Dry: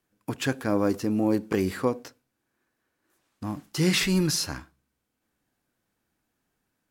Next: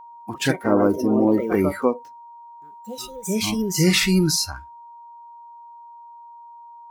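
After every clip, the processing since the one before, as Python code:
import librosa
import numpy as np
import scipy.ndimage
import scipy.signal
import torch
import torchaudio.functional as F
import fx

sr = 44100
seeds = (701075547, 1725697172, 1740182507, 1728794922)

y = fx.echo_pitch(x, sr, ms=99, semitones=3, count=2, db_per_echo=-6.0)
y = fx.noise_reduce_blind(y, sr, reduce_db=19)
y = y + 10.0 ** (-46.0 / 20.0) * np.sin(2.0 * np.pi * 940.0 * np.arange(len(y)) / sr)
y = F.gain(torch.from_numpy(y), 5.5).numpy()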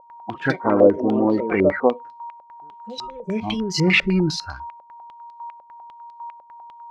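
y = fx.filter_held_lowpass(x, sr, hz=10.0, low_hz=560.0, high_hz=4300.0)
y = F.gain(torch.from_numpy(y), -1.5).numpy()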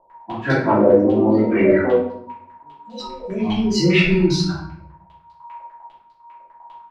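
y = fx.rotary_switch(x, sr, hz=5.5, then_hz=0.75, switch_at_s=3.2)
y = fx.room_shoebox(y, sr, seeds[0], volume_m3=130.0, walls='mixed', distance_m=2.9)
y = F.gain(torch.from_numpy(y), -6.5).numpy()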